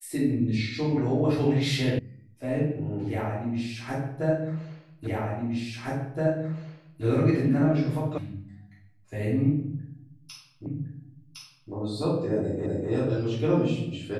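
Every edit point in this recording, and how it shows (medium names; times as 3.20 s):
1.99 s: sound stops dead
5.07 s: repeat of the last 1.97 s
8.18 s: sound stops dead
10.66 s: repeat of the last 1.06 s
12.66 s: repeat of the last 0.25 s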